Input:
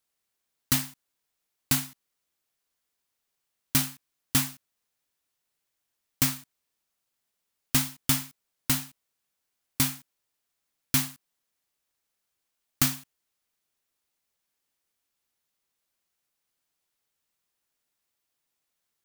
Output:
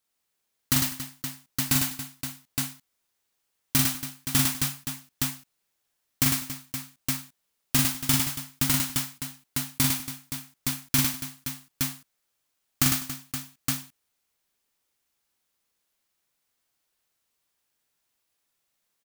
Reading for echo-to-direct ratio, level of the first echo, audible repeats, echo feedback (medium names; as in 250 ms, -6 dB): 1.5 dB, -3.5 dB, 6, no regular repeats